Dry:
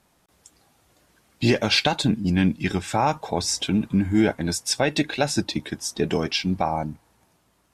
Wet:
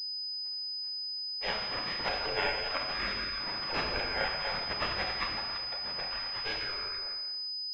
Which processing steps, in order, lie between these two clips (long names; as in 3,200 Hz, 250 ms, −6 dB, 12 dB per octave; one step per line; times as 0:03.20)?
delay that plays each chunk backwards 174 ms, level −5 dB
0:01.52–0:01.93: high-pass filter 590 Hz 12 dB per octave
gate on every frequency bin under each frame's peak −25 dB weak
0:05.33–0:06.32: downward compressor, threshold −41 dBFS, peak gain reduction 7 dB
reverb whose tail is shaped and stops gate 390 ms falling, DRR 0 dB
switching amplifier with a slow clock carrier 5,000 Hz
level +5.5 dB